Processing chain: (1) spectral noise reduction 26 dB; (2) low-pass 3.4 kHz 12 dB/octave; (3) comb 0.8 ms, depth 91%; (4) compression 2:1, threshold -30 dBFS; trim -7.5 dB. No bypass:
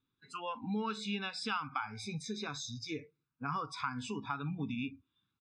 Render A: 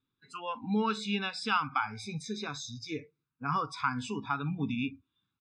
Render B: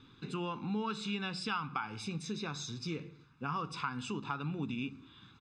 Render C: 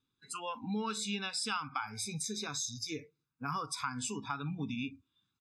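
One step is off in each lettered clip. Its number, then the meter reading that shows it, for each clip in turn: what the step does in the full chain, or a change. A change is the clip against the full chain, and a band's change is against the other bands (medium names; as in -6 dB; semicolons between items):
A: 4, mean gain reduction 3.5 dB; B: 1, 125 Hz band +2.5 dB; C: 2, 8 kHz band +11.0 dB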